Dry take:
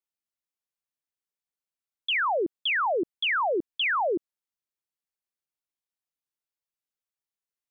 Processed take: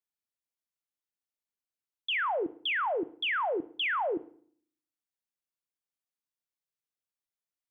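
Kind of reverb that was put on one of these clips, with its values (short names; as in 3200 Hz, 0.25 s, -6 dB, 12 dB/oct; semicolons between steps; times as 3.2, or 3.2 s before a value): FDN reverb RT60 0.54 s, low-frequency decay 1.4×, high-frequency decay 0.95×, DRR 14.5 dB; gain -4.5 dB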